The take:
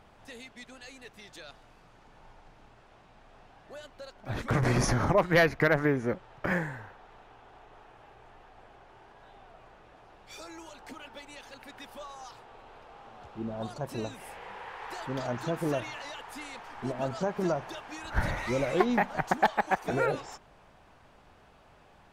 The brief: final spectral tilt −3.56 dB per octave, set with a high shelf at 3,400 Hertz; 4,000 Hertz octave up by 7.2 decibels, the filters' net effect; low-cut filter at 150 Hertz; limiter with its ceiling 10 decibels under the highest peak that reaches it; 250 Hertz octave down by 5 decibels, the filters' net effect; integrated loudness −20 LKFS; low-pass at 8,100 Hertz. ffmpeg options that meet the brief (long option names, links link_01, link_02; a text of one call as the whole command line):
ffmpeg -i in.wav -af "highpass=150,lowpass=8100,equalizer=frequency=250:width_type=o:gain=-6,highshelf=frequency=3400:gain=7,equalizer=frequency=4000:width_type=o:gain=4.5,volume=14.5dB,alimiter=limit=-4dB:level=0:latency=1" out.wav